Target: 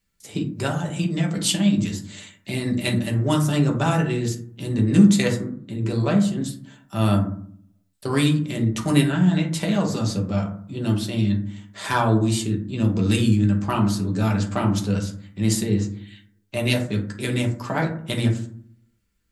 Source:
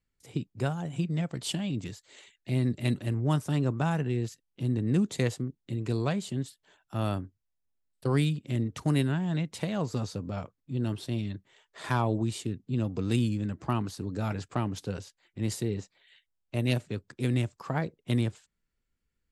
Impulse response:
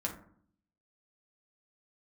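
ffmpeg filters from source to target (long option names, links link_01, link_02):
-filter_complex "[0:a]asetnsamples=nb_out_samples=441:pad=0,asendcmd='5.3 highshelf g 2;6.44 highshelf g 8.5',highshelf=frequency=2000:gain=10[link_01];[1:a]atrim=start_sample=2205[link_02];[link_01][link_02]afir=irnorm=-1:irlink=0,volume=4dB"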